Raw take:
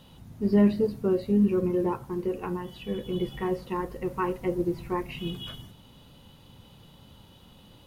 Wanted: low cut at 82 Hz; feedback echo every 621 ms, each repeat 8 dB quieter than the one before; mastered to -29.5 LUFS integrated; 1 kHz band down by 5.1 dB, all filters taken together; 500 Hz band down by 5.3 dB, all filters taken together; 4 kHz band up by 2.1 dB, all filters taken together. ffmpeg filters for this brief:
-af "highpass=82,equalizer=f=500:t=o:g=-7.5,equalizer=f=1000:t=o:g=-4,equalizer=f=4000:t=o:g=3.5,aecho=1:1:621|1242|1863|2484|3105:0.398|0.159|0.0637|0.0255|0.0102,volume=1.06"

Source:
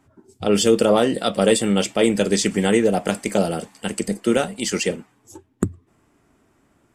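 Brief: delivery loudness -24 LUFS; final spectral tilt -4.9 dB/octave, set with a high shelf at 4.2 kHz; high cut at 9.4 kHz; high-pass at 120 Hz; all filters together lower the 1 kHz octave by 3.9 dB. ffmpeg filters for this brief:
-af "highpass=120,lowpass=9400,equalizer=f=1000:t=o:g=-6,highshelf=f=4200:g=-4.5,volume=0.75"

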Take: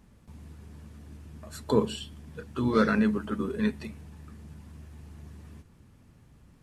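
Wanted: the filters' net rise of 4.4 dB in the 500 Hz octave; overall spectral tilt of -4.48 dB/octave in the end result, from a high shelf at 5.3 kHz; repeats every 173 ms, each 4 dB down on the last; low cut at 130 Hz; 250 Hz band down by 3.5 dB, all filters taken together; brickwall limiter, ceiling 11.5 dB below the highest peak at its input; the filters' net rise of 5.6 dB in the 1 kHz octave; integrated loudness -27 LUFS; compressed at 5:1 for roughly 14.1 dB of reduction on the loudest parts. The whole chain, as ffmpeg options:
-af "highpass=130,equalizer=f=250:t=o:g=-5,equalizer=f=500:t=o:g=5.5,equalizer=f=1000:t=o:g=6,highshelf=f=5300:g=9,acompressor=threshold=0.0282:ratio=5,alimiter=level_in=2:limit=0.0631:level=0:latency=1,volume=0.501,aecho=1:1:173|346|519|692|865|1038|1211|1384|1557:0.631|0.398|0.25|0.158|0.0994|0.0626|0.0394|0.0249|0.0157,volume=4.73"

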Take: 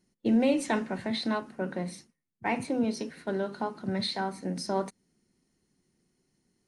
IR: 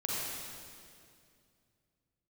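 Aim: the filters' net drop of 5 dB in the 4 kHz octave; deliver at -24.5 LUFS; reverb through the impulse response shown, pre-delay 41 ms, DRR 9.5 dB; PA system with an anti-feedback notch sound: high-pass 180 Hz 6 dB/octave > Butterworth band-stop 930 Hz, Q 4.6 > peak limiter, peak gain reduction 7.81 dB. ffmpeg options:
-filter_complex "[0:a]equalizer=f=4000:t=o:g=-5.5,asplit=2[s0][s1];[1:a]atrim=start_sample=2205,adelay=41[s2];[s1][s2]afir=irnorm=-1:irlink=0,volume=0.178[s3];[s0][s3]amix=inputs=2:normalize=0,highpass=f=180:p=1,asuperstop=centerf=930:order=8:qfactor=4.6,volume=3.35,alimiter=limit=0.211:level=0:latency=1"

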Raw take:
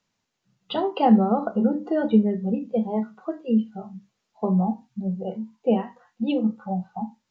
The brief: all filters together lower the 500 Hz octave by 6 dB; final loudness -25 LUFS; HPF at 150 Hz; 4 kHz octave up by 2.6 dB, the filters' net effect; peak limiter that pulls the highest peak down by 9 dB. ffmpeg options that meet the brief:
-af "highpass=150,equalizer=f=500:t=o:g=-7.5,equalizer=f=4000:t=o:g=4,volume=1.68,alimiter=limit=0.211:level=0:latency=1"

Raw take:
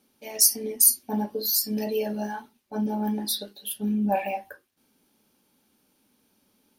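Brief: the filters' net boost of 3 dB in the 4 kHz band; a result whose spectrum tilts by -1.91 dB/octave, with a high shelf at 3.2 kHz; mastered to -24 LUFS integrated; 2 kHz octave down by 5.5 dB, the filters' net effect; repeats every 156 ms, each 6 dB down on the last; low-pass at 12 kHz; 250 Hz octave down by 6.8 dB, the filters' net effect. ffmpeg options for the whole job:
-af "lowpass=12000,equalizer=f=250:t=o:g=-8.5,equalizer=f=2000:t=o:g=-9,highshelf=f=3200:g=-3,equalizer=f=4000:t=o:g=8,aecho=1:1:156|312|468|624|780|936:0.501|0.251|0.125|0.0626|0.0313|0.0157,volume=1.26"

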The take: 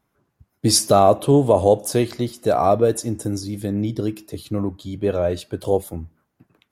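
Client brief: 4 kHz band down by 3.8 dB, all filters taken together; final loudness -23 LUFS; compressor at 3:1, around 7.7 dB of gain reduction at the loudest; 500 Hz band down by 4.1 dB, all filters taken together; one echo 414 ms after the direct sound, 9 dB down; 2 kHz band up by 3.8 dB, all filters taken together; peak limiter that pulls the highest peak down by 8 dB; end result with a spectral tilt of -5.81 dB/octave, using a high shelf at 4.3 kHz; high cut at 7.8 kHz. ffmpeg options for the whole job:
-af "lowpass=7800,equalizer=f=500:t=o:g=-5.5,equalizer=f=2000:t=o:g=7,equalizer=f=4000:t=o:g=-3.5,highshelf=f=4300:g=-3,acompressor=threshold=0.0794:ratio=3,alimiter=limit=0.141:level=0:latency=1,aecho=1:1:414:0.355,volume=2"

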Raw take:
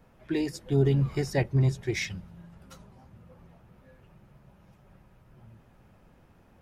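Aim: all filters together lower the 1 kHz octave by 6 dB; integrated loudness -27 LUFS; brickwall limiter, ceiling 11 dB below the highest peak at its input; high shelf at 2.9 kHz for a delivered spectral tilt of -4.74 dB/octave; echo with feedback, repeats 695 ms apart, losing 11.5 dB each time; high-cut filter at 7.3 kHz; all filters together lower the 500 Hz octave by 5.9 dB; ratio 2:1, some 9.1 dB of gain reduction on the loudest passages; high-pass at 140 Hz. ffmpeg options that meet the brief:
-af "highpass=140,lowpass=7300,equalizer=f=500:t=o:g=-7,equalizer=f=1000:t=o:g=-6,highshelf=f=2900:g=8,acompressor=threshold=0.01:ratio=2,alimiter=level_in=3.35:limit=0.0631:level=0:latency=1,volume=0.299,aecho=1:1:695|1390|2085:0.266|0.0718|0.0194,volume=7.94"

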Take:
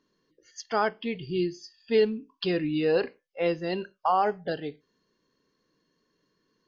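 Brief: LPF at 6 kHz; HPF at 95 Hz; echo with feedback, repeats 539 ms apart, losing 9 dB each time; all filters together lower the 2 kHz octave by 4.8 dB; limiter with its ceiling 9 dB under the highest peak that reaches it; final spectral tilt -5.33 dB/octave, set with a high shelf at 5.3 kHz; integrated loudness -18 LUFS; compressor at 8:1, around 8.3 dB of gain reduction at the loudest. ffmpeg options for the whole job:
-af "highpass=95,lowpass=6000,equalizer=f=2000:t=o:g=-6,highshelf=f=5300:g=-4,acompressor=threshold=0.0501:ratio=8,alimiter=level_in=1.33:limit=0.0631:level=0:latency=1,volume=0.75,aecho=1:1:539|1078|1617|2156:0.355|0.124|0.0435|0.0152,volume=8.91"

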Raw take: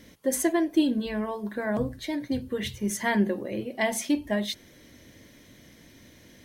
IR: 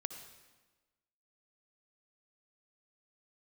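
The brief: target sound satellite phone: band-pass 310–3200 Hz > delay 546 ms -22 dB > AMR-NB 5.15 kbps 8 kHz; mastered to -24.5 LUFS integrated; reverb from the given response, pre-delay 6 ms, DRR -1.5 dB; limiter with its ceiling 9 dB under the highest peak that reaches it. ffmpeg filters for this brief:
-filter_complex "[0:a]alimiter=limit=0.0841:level=0:latency=1,asplit=2[s0][s1];[1:a]atrim=start_sample=2205,adelay=6[s2];[s1][s2]afir=irnorm=-1:irlink=0,volume=1.41[s3];[s0][s3]amix=inputs=2:normalize=0,highpass=310,lowpass=3200,aecho=1:1:546:0.0794,volume=2.24" -ar 8000 -c:a libopencore_amrnb -b:a 5150

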